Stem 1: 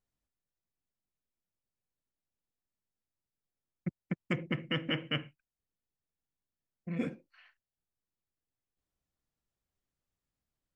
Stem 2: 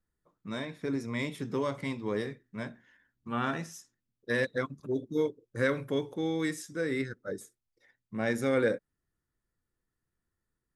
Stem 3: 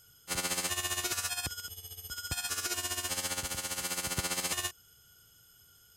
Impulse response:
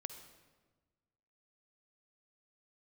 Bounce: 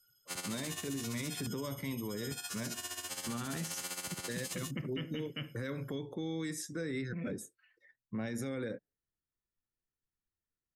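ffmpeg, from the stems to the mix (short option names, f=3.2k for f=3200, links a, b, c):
-filter_complex "[0:a]adelay=250,volume=-3dB[a];[1:a]acompressor=threshold=-30dB:ratio=6,volume=2.5dB[b];[2:a]highpass=130,alimiter=level_in=1dB:limit=-24dB:level=0:latency=1:release=455,volume=-1dB,volume=-3dB[c];[a][b][c]amix=inputs=3:normalize=0,afftdn=nr=15:nf=-57,acrossover=split=280|3000[d][e][f];[e]acompressor=threshold=-40dB:ratio=4[g];[d][g][f]amix=inputs=3:normalize=0,alimiter=level_in=5.5dB:limit=-24dB:level=0:latency=1:release=15,volume=-5.5dB"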